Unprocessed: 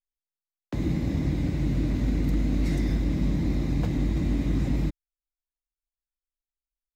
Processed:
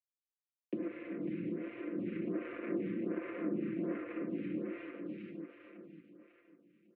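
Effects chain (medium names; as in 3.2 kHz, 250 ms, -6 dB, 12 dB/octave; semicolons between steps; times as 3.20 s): hard clipper -26 dBFS, distortion -9 dB; thinning echo 408 ms, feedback 56%, high-pass 360 Hz, level -15.5 dB; compression 12:1, threshold -33 dBFS, peak gain reduction 6.5 dB; 2.05–4.18 s: waveshaping leveller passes 3; bit crusher 8-bit; Chebyshev band-pass 130–2600 Hz, order 4; static phaser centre 340 Hz, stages 4; comb 5.8 ms, depth 79%; feedback delay 549 ms, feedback 42%, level -6 dB; low-pass that closes with the level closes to 410 Hz, closed at -28 dBFS; lamp-driven phase shifter 1.3 Hz; trim +3 dB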